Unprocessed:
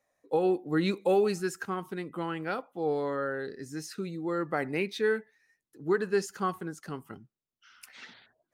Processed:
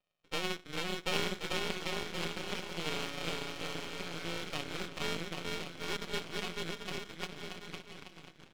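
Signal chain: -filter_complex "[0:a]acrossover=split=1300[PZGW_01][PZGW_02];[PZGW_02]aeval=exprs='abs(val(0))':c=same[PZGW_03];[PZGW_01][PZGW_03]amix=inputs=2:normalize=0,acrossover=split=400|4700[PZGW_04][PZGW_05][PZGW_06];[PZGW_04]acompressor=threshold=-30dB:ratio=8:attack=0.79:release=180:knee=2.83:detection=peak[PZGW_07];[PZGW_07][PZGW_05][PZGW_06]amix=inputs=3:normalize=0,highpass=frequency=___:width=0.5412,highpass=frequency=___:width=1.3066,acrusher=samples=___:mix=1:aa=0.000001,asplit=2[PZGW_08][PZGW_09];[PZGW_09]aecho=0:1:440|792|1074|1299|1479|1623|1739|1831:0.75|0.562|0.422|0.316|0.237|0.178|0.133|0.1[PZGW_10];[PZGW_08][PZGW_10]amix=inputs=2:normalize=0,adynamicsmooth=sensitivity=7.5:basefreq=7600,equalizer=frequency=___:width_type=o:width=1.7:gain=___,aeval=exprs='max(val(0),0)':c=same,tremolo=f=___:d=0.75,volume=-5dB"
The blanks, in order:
72, 72, 24, 3100, 13.5, 170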